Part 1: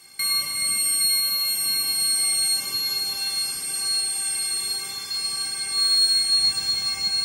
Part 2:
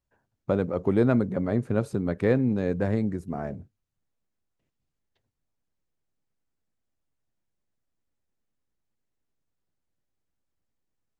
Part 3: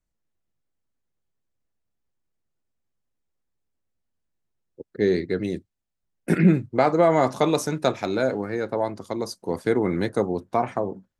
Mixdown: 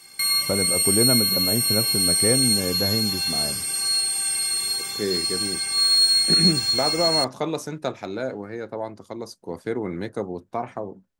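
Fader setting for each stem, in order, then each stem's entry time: +1.5 dB, -0.5 dB, -5.5 dB; 0.00 s, 0.00 s, 0.00 s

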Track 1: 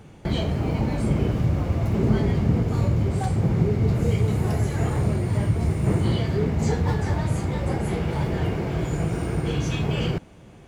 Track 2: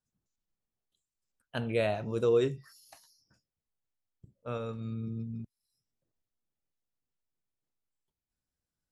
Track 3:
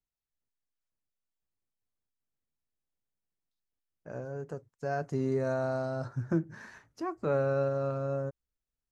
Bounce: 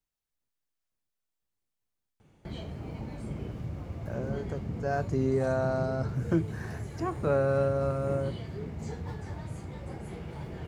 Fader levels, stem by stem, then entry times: -15.0 dB, mute, +2.5 dB; 2.20 s, mute, 0.00 s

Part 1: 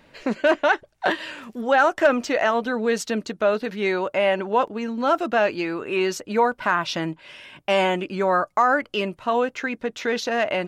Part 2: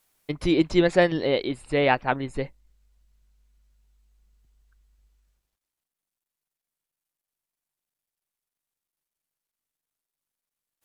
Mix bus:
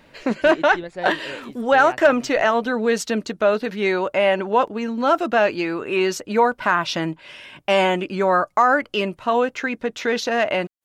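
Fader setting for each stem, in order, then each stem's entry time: +2.5 dB, -13.0 dB; 0.00 s, 0.00 s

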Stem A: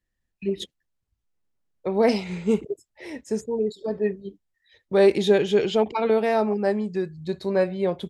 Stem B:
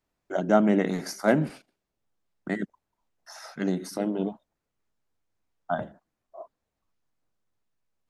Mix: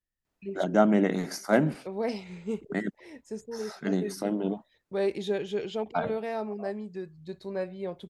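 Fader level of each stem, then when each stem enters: -11.0 dB, -1.0 dB; 0.00 s, 0.25 s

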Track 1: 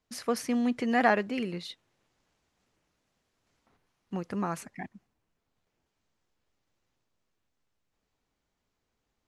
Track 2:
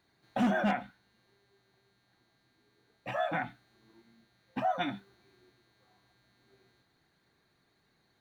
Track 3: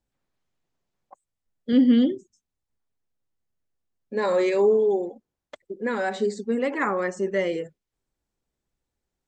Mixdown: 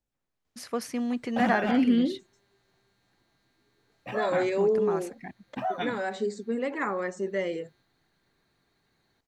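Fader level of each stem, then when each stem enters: -2.0 dB, 0.0 dB, -5.0 dB; 0.45 s, 1.00 s, 0.00 s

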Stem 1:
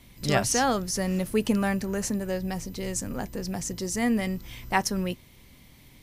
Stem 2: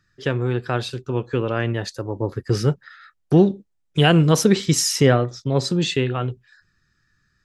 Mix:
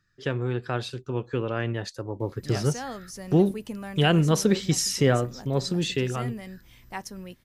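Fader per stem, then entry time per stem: -11.5 dB, -5.5 dB; 2.20 s, 0.00 s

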